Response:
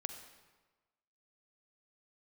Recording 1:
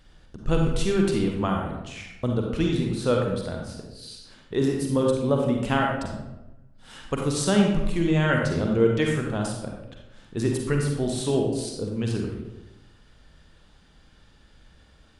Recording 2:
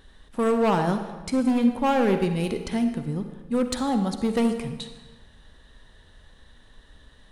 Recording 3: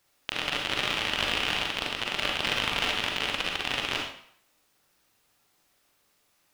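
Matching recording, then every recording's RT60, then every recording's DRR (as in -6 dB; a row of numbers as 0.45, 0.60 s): 2; 0.95, 1.3, 0.60 s; 0.5, 7.0, -0.5 dB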